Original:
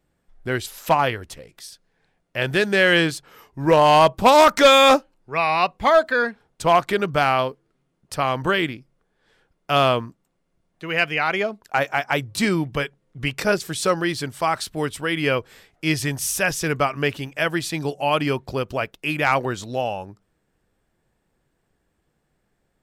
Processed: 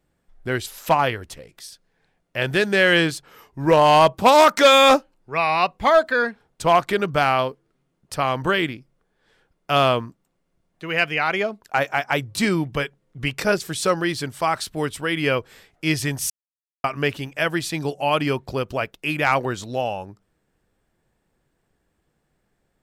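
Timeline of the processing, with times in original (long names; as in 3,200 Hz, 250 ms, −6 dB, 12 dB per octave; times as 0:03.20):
0:04.16–0:04.72: high-pass filter 100 Hz → 240 Hz 6 dB per octave
0:16.30–0:16.84: silence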